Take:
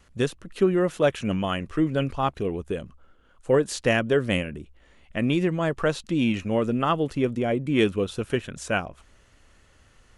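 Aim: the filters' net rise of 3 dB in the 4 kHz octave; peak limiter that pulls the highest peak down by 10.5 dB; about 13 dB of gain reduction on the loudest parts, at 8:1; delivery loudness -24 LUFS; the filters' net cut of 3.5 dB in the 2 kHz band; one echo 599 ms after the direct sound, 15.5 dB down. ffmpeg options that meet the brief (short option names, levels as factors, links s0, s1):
-af "equalizer=f=2000:t=o:g=-7,equalizer=f=4000:t=o:g=7.5,acompressor=threshold=0.0355:ratio=8,alimiter=level_in=1.78:limit=0.0631:level=0:latency=1,volume=0.562,aecho=1:1:599:0.168,volume=5.62"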